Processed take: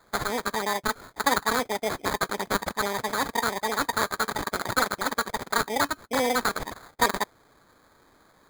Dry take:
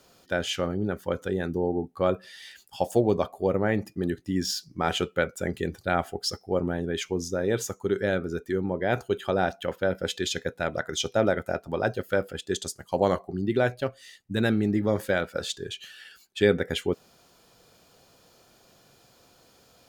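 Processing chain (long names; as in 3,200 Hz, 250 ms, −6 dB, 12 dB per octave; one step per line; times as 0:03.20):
wrong playback speed 33 rpm record played at 78 rpm
sample-rate reduction 2,800 Hz, jitter 0%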